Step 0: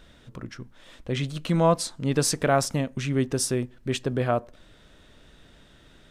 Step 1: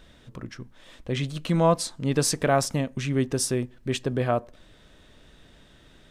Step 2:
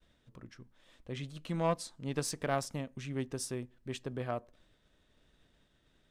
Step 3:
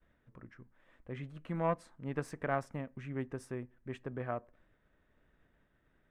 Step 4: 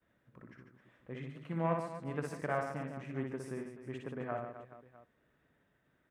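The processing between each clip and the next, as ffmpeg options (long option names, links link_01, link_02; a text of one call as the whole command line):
ffmpeg -i in.wav -af "bandreject=frequency=1400:width=20" out.wav
ffmpeg -i in.wav -af "aeval=exprs='0.376*(cos(1*acos(clip(val(0)/0.376,-1,1)))-cos(1*PI/2))+0.0531*(cos(3*acos(clip(val(0)/0.376,-1,1)))-cos(3*PI/2))':channel_layout=same,agate=range=-33dB:threshold=-54dB:ratio=3:detection=peak,volume=-8.5dB" out.wav
ffmpeg -i in.wav -af "highshelf=frequency=2800:width_type=q:width=1.5:gain=-14,volume=-2dB" out.wav
ffmpeg -i in.wav -filter_complex "[0:a]highpass=93,asplit=2[link_01][link_02];[link_02]aecho=0:1:60|144|261.6|426.2|656.7:0.631|0.398|0.251|0.158|0.1[link_03];[link_01][link_03]amix=inputs=2:normalize=0,volume=-2dB" out.wav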